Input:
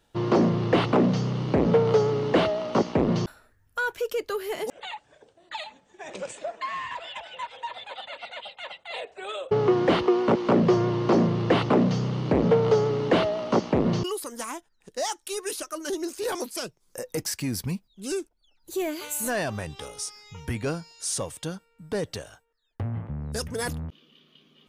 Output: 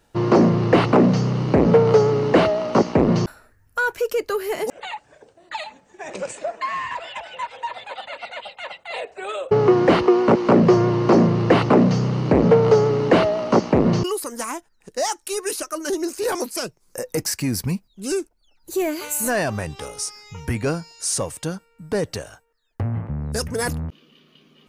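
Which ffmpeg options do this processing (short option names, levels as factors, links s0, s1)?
-af "equalizer=f=3400:w=3.8:g=-7.5,volume=2"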